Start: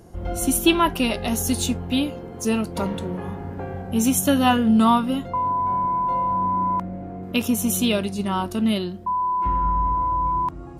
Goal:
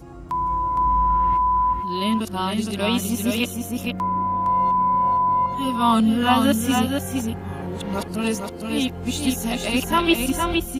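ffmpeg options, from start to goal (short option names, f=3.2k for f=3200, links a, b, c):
-filter_complex "[0:a]areverse,acrossover=split=3000[a][b];[b]acompressor=threshold=-35dB:ratio=4:attack=1:release=60[c];[a][c]amix=inputs=2:normalize=0,highshelf=f=2.2k:g=8,asplit=2[d][e];[e]aecho=0:1:463:0.596[f];[d][f]amix=inputs=2:normalize=0,volume=-2dB"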